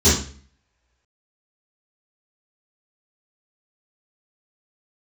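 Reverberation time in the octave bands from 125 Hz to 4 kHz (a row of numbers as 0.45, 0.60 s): 0.55, 0.55, 0.45, 0.40, 0.45, 0.40 s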